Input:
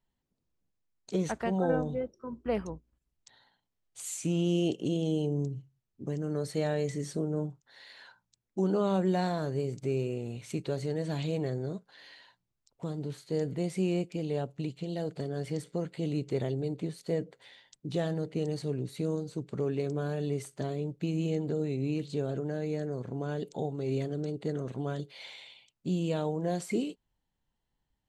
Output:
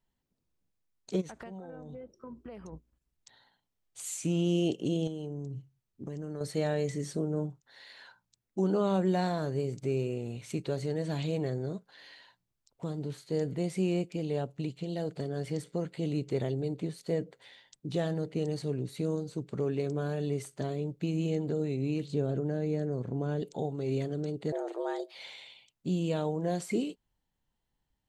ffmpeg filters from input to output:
ffmpeg -i in.wav -filter_complex "[0:a]asplit=3[link_01][link_02][link_03];[link_01]afade=type=out:start_time=1.2:duration=0.02[link_04];[link_02]acompressor=threshold=-40dB:ratio=20:attack=3.2:release=140:knee=1:detection=peak,afade=type=in:start_time=1.2:duration=0.02,afade=type=out:start_time=2.72:duration=0.02[link_05];[link_03]afade=type=in:start_time=2.72:duration=0.02[link_06];[link_04][link_05][link_06]amix=inputs=3:normalize=0,asettb=1/sr,asplit=3[link_07][link_08][link_09];[link_07]atrim=end=5.074[link_10];[link_08]atrim=start=5.07:end=6.41,asetpts=PTS-STARTPTS,afade=type=in:duration=0.004:curve=qsin,afade=type=out:start_time=1.336:duration=0.004:curve=qsin,acompressor=threshold=-34dB:ratio=6:attack=3.2:release=140:knee=1:detection=peak[link_11];[link_09]atrim=start=6.406[link_12];[link_10][link_11]acrossfade=duration=0.004:curve1=hsin:curve2=qsin[link_13];[link_13][link_12]acrossfade=duration=0.004:curve1=qsin:curve2=hsin,asettb=1/sr,asplit=3[link_14][link_15][link_16];[link_14]atrim=end=22.104[link_17];[link_15]atrim=start=22.1:end=23.42,asetpts=PTS-STARTPTS,afade=type=in:duration=0.004:curve=qsin,afade=type=out:start_time=1.316:duration=0.004:curve=qsin,tiltshelf=frequency=640:gain=3.5[link_18];[link_16]atrim=start=23.416[link_19];[link_17][link_18]acrossfade=duration=0.004:curve1=hsin:curve2=qsin[link_20];[link_20][link_19]acrossfade=duration=0.004:curve1=qsin:curve2=hsin,asettb=1/sr,asplit=3[link_21][link_22][link_23];[link_21]atrim=end=24.524[link_24];[link_22]atrim=start=24.52:end=25.15,asetpts=PTS-STARTPTS,afade=type=in:duration=0.004:curve=qsin,afade=type=out:start_time=0.626:duration=0.004:curve=qsin,afreqshift=220[link_25];[link_23]atrim=start=25.146[link_26];[link_24][link_25]acrossfade=duration=0.004:curve1=hsin:curve2=qsin[link_27];[link_27][link_26]acrossfade=duration=0.004:curve1=qsin:curve2=hsin" out.wav

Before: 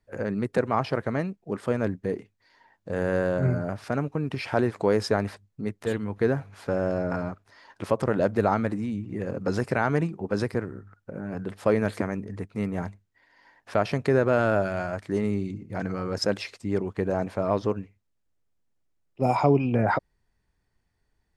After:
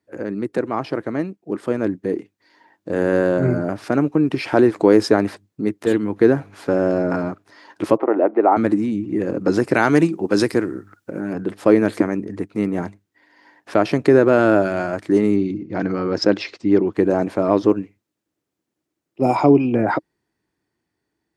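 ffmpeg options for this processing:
ffmpeg -i in.wav -filter_complex "[0:a]asettb=1/sr,asplit=3[link_01][link_02][link_03];[link_01]atrim=end=7.974[link_04];[link_02]atrim=start=7.97:end=8.57,asetpts=PTS-STARTPTS,afade=type=in:duration=0.004:curve=qsin,afade=type=out:start_time=0.596:duration=0.004:curve=qsin,highpass=frequency=320:width=0.5412,highpass=frequency=320:width=1.3066,equalizer=frequency=500:width_type=q:width=4:gain=-3,equalizer=frequency=770:width_type=q:width=4:gain=6,equalizer=frequency=1600:width_type=q:width=4:gain=-8,lowpass=frequency=2100:width=0.5412,lowpass=frequency=2100:width=1.3066[link_05];[link_03]atrim=start=8.566[link_06];[link_04][link_05]acrossfade=duration=0.004:curve1=hsin:curve2=qsin[link_07];[link_07][link_06]acrossfade=duration=0.004:curve1=qsin:curve2=hsin,asettb=1/sr,asplit=3[link_08][link_09][link_10];[link_08]atrim=end=9.744[link_11];[link_09]atrim=start=9.74:end=11.33,asetpts=PTS-STARTPTS,afade=type=in:duration=0.004:curve=qsin,afade=type=out:start_time=1.586:duration=0.004:curve=qsin,highshelf=frequency=2400:gain=11[link_12];[link_10]atrim=start=11.326[link_13];[link_11][link_12]acrossfade=duration=0.004:curve1=hsin:curve2=qsin[link_14];[link_14][link_13]acrossfade=duration=0.004:curve1=qsin:curve2=hsin,asettb=1/sr,asplit=3[link_15][link_16][link_17];[link_15]atrim=end=15.364[link_18];[link_16]atrim=start=15.36:end=16.93,asetpts=PTS-STARTPTS,afade=type=in:duration=0.004:curve=qsin,afade=type=out:start_time=1.566:duration=0.004:curve=qsin,lowpass=frequency=5700:width=0.5412,lowpass=frequency=5700:width=1.3066[link_19];[link_17]atrim=start=16.926[link_20];[link_18][link_19]acrossfade=duration=0.004:curve1=hsin:curve2=qsin[link_21];[link_21][link_20]acrossfade=duration=0.004:curve1=qsin:curve2=hsin,highpass=140,equalizer=frequency=320:width_type=o:width=0.44:gain=12,dynaudnorm=framelen=350:gausssize=13:maxgain=11.5dB" out.wav

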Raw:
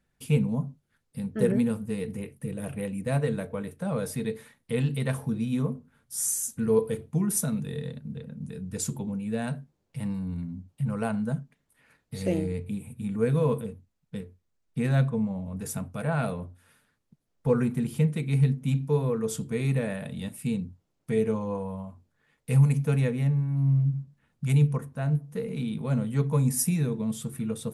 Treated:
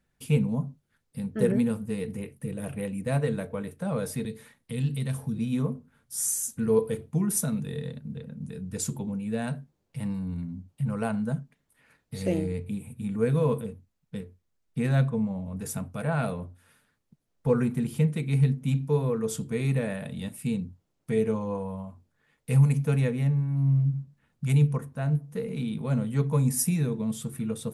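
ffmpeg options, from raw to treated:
ffmpeg -i in.wav -filter_complex "[0:a]asettb=1/sr,asplit=3[link_01][link_02][link_03];[link_01]atrim=end=4.254[link_04];[link_02]atrim=start=4.25:end=5.39,asetpts=PTS-STARTPTS,afade=type=in:duration=0.004:curve=qsin,afade=type=out:start_time=1.136:duration=0.004:curve=qsin,acrossover=split=250|3000[link_05][link_06][link_07];[link_06]acompressor=threshold=-49dB:ratio=2:attack=3.2:release=140:knee=2.83:detection=peak[link_08];[link_05][link_08][link_07]amix=inputs=3:normalize=0[link_09];[link_03]atrim=start=5.386[link_10];[link_04][link_09]acrossfade=duration=0.004:curve1=hsin:curve2=qsin[link_11];[link_11][link_10]acrossfade=duration=0.004:curve1=qsin:curve2=hsin" out.wav

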